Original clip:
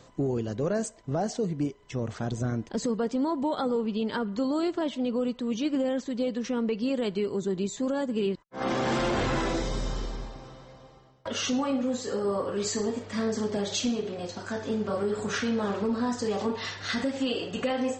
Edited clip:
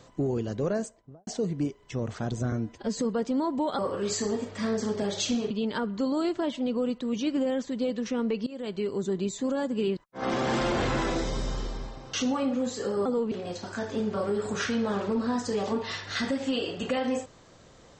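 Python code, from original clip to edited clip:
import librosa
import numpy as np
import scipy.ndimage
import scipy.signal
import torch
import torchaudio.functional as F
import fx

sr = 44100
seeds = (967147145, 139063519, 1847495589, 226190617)

y = fx.studio_fade_out(x, sr, start_s=0.65, length_s=0.62)
y = fx.edit(y, sr, fx.stretch_span(start_s=2.52, length_s=0.31, factor=1.5),
    fx.swap(start_s=3.63, length_s=0.26, other_s=12.33, other_length_s=1.72),
    fx.fade_in_from(start_s=6.85, length_s=0.6, curve='qsin', floor_db=-20.5),
    fx.cut(start_s=10.52, length_s=0.89), tone=tone)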